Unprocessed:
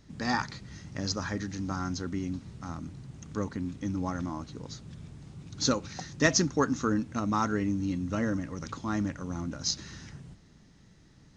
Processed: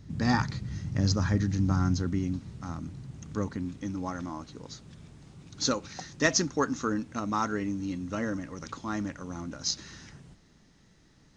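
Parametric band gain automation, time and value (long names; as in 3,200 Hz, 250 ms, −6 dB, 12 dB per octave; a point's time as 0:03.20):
parametric band 100 Hz 2.4 octaves
0:01.85 +12 dB
0:02.46 +2.5 dB
0:03.45 +2.5 dB
0:04.02 −5.5 dB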